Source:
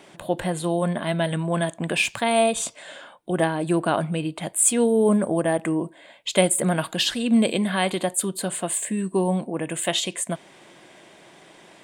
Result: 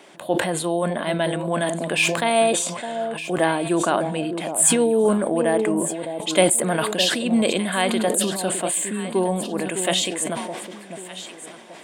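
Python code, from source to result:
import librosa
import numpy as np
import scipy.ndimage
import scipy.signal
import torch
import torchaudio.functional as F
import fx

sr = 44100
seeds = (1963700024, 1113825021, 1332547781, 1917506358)

y = scipy.signal.sosfilt(scipy.signal.butter(2, 230.0, 'highpass', fs=sr, output='sos'), x)
y = fx.echo_alternate(y, sr, ms=608, hz=860.0, feedback_pct=52, wet_db=-8)
y = fx.sustainer(y, sr, db_per_s=48.0)
y = F.gain(torch.from_numpy(y), 1.5).numpy()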